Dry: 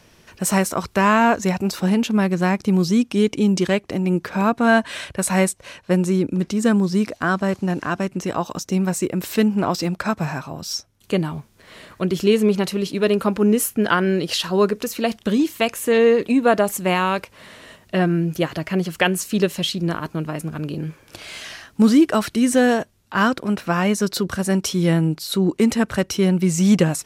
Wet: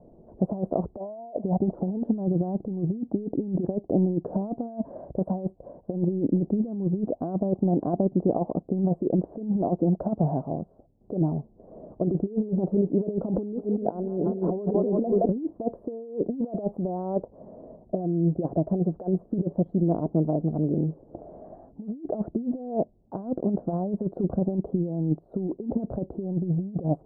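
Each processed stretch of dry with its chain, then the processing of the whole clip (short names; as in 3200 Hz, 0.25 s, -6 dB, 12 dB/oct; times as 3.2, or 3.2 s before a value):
0.97–1.44 synth low-pass 650 Hz, resonance Q 3.7 + tilt +3.5 dB/oct
13.29–15.29 split-band echo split 540 Hz, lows 0.261 s, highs 0.171 s, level -10 dB + negative-ratio compressor -29 dBFS
whole clip: bell 91 Hz -8.5 dB 1.1 oct; negative-ratio compressor -23 dBFS, ratio -0.5; elliptic low-pass 720 Hz, stop band 70 dB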